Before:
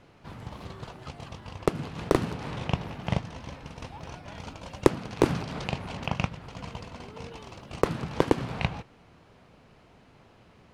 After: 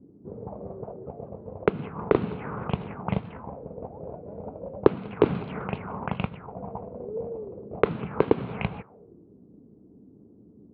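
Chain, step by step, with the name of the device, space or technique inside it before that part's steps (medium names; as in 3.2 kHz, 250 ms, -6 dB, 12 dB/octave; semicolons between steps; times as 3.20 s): envelope filter bass rig (touch-sensitive low-pass 260–4000 Hz up, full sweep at -26.5 dBFS; cabinet simulation 60–2300 Hz, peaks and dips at 200 Hz +7 dB, 430 Hz +8 dB, 1.8 kHz -7 dB); trim -2 dB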